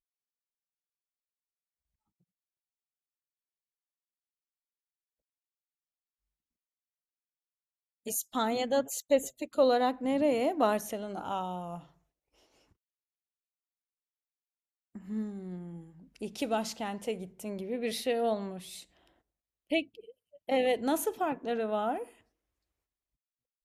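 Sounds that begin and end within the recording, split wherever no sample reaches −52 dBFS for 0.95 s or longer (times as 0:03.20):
0:08.06–0:11.87
0:14.95–0:22.21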